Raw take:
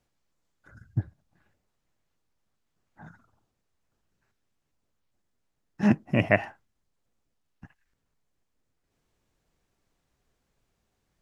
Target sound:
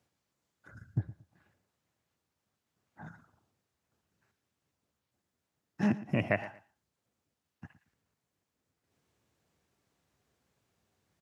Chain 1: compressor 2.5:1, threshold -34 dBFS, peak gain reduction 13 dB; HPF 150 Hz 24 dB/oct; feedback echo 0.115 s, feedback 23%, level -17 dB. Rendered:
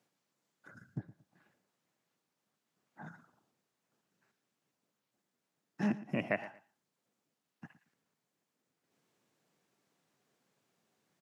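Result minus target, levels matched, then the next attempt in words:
125 Hz band -4.0 dB; compressor: peak gain reduction +3.5 dB
compressor 2.5:1, threshold -28 dBFS, peak gain reduction 9.5 dB; HPF 70 Hz 24 dB/oct; feedback echo 0.115 s, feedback 23%, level -17 dB

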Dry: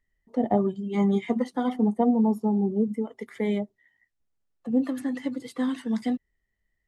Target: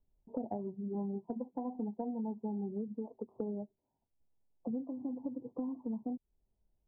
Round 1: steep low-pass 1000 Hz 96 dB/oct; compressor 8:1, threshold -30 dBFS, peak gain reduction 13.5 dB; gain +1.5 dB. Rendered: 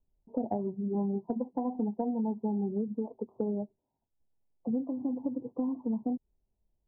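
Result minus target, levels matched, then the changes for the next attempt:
compressor: peak gain reduction -6.5 dB
change: compressor 8:1, threshold -37.5 dBFS, peak gain reduction 20 dB

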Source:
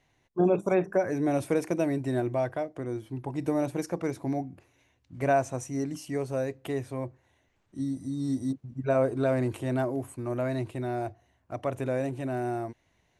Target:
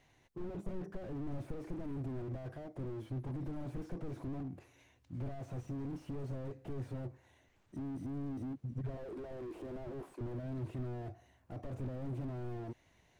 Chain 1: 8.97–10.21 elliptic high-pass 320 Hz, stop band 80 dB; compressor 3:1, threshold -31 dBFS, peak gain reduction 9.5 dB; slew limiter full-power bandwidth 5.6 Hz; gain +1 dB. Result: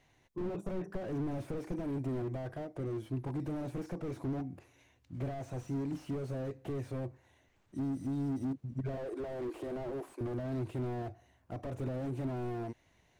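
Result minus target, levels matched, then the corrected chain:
slew limiter: distortion -7 dB
8.97–10.21 elliptic high-pass 320 Hz, stop band 80 dB; compressor 3:1, threshold -31 dBFS, peak gain reduction 9.5 dB; slew limiter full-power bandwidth 2.5 Hz; gain +1 dB

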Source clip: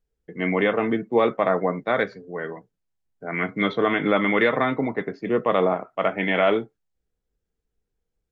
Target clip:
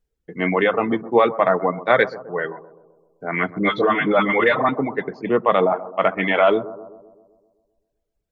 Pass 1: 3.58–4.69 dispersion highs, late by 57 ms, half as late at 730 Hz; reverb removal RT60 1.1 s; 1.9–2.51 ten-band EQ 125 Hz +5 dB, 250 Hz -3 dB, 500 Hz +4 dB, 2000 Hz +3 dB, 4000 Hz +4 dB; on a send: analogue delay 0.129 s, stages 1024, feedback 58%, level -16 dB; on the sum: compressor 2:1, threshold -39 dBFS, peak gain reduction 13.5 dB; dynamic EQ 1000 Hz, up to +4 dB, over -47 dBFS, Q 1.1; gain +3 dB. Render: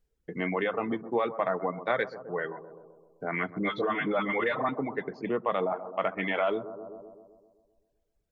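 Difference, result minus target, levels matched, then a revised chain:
compressor: peak gain reduction +13.5 dB
3.58–4.69 dispersion highs, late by 57 ms, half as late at 730 Hz; reverb removal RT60 1.1 s; 1.9–2.51 ten-band EQ 125 Hz +5 dB, 250 Hz -3 dB, 500 Hz +4 dB, 2000 Hz +3 dB, 4000 Hz +4 dB; on a send: analogue delay 0.129 s, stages 1024, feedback 58%, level -16 dB; on the sum: dynamic EQ 1000 Hz, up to +4 dB, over -47 dBFS, Q 1.1; gain +3 dB

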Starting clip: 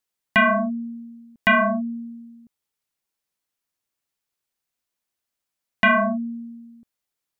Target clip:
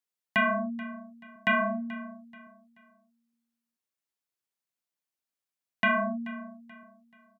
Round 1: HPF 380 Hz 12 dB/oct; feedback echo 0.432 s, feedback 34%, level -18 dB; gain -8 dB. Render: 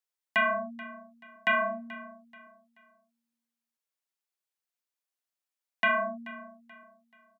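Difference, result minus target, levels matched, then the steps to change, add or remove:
125 Hz band -11.0 dB
change: HPF 110 Hz 12 dB/oct

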